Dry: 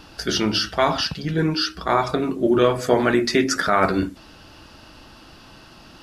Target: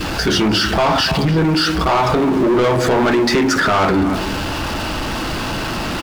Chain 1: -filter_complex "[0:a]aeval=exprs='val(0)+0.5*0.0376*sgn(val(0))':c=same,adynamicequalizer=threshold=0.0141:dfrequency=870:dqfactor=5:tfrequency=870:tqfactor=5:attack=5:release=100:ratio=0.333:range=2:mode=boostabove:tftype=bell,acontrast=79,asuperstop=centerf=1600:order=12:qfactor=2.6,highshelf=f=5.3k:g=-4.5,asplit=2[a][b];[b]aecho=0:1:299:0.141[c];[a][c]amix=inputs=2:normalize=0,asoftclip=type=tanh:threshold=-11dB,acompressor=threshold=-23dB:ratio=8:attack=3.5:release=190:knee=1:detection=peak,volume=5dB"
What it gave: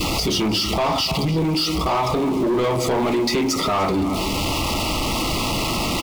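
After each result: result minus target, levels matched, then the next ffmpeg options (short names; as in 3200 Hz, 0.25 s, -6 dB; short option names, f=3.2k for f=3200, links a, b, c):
compressor: peak gain reduction +5 dB; 8000 Hz band +5.0 dB; 2000 Hz band -4.0 dB
-filter_complex "[0:a]aeval=exprs='val(0)+0.5*0.0376*sgn(val(0))':c=same,adynamicequalizer=threshold=0.0141:dfrequency=870:dqfactor=5:tfrequency=870:tqfactor=5:attack=5:release=100:ratio=0.333:range=2:mode=boostabove:tftype=bell,acontrast=79,asuperstop=centerf=1600:order=12:qfactor=2.6,highshelf=f=5.3k:g=-4.5,asplit=2[a][b];[b]aecho=0:1:299:0.141[c];[a][c]amix=inputs=2:normalize=0,asoftclip=type=tanh:threshold=-11dB,acompressor=threshold=-17dB:ratio=8:attack=3.5:release=190:knee=1:detection=peak,volume=5dB"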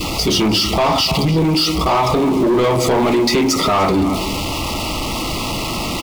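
2000 Hz band -5.0 dB; 8000 Hz band +4.0 dB
-filter_complex "[0:a]aeval=exprs='val(0)+0.5*0.0376*sgn(val(0))':c=same,adynamicequalizer=threshold=0.0141:dfrequency=870:dqfactor=5:tfrequency=870:tqfactor=5:attack=5:release=100:ratio=0.333:range=2:mode=boostabove:tftype=bell,acontrast=79,highshelf=f=5.3k:g=-4.5,asplit=2[a][b];[b]aecho=0:1:299:0.141[c];[a][c]amix=inputs=2:normalize=0,asoftclip=type=tanh:threshold=-11dB,acompressor=threshold=-17dB:ratio=8:attack=3.5:release=190:knee=1:detection=peak,volume=5dB"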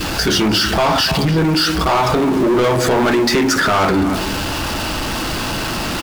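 8000 Hz band +3.5 dB
-filter_complex "[0:a]aeval=exprs='val(0)+0.5*0.0376*sgn(val(0))':c=same,adynamicequalizer=threshold=0.0141:dfrequency=870:dqfactor=5:tfrequency=870:tqfactor=5:attack=5:release=100:ratio=0.333:range=2:mode=boostabove:tftype=bell,acontrast=79,highshelf=f=5.3k:g=-12.5,asplit=2[a][b];[b]aecho=0:1:299:0.141[c];[a][c]amix=inputs=2:normalize=0,asoftclip=type=tanh:threshold=-11dB,acompressor=threshold=-17dB:ratio=8:attack=3.5:release=190:knee=1:detection=peak,volume=5dB"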